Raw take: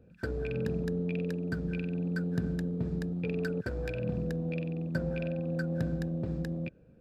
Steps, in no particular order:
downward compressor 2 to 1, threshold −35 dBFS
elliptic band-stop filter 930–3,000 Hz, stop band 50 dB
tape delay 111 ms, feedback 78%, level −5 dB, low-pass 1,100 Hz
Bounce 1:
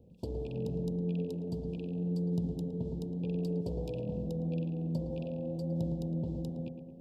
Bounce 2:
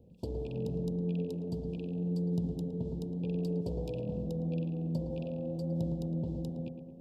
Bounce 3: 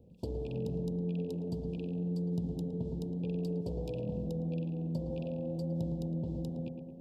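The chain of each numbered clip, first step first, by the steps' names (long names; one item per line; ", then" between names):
downward compressor, then tape delay, then elliptic band-stop filter
elliptic band-stop filter, then downward compressor, then tape delay
tape delay, then elliptic band-stop filter, then downward compressor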